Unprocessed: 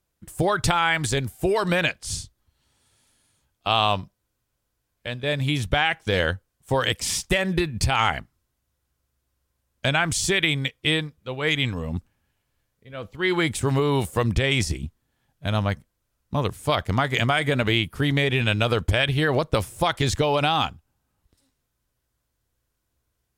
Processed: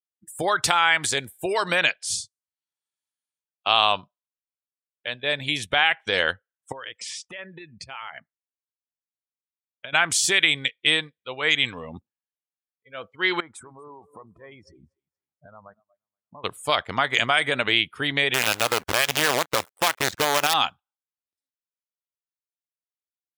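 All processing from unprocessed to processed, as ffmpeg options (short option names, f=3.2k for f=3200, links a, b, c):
-filter_complex "[0:a]asettb=1/sr,asplit=3[a][b][c];[a]atrim=end=6.724[d];[b]atrim=start=6.72:end=9.93,asetpts=PTS-STARTPTS,afade=t=in:d=0.004:c=qsin,afade=t=out:st=3.206:d=0.004:c=qsin,aemphasis=mode=reproduction:type=50kf,bandreject=f=780:w=12,acompressor=threshold=-33dB:ratio=8:attack=3.2:release=140:knee=1:detection=peak[e];[c]atrim=start=9.926[f];[d][e]acrossfade=d=0.004:c1=hsin:c2=qsin[g];[g][f]acrossfade=d=0.004:c1=qsin:c2=hsin,asettb=1/sr,asplit=3[h][i][j];[h]atrim=end=13.404[k];[i]atrim=start=13.4:end=16.44,asetpts=PTS-STARTPTS,afade=t=in:d=0.004:c=qsin,afade=t=out:st=3.036:d=0.004:c=qsin,highshelf=f=1.8k:t=q:w=1.5:g=-11,acompressor=threshold=-35dB:ratio=16:attack=3.2:release=140:knee=1:detection=peak,aecho=1:1:238|476|714|952:0.237|0.0949|0.0379|0.0152,atrim=end_sample=134064[l];[j]atrim=start=16.436[m];[k][l]acrossfade=d=0.004:c1=hsin:c2=qsin[n];[n][m]acrossfade=d=0.004:c1=qsin:c2=hsin,asettb=1/sr,asplit=3[o][p][q];[o]atrim=end=18.344[r];[p]atrim=start=18.34:end=20.54,asetpts=PTS-STARTPTS,afade=t=in:d=0.004:c=qsin,afade=t=out:st=2.196:d=0.004:c=qsin,lowpass=f=1.6k:p=1,acrusher=bits=4:dc=4:mix=0:aa=0.000001[s];[q]atrim=start=20.536[t];[r][s]acrossfade=d=0.004:c1=hsin:c2=qsin[u];[u][t]acrossfade=d=0.004:c1=qsin:c2=hsin,highpass=f=950:p=1,afftdn=nr=31:nf=-47,volume=4dB"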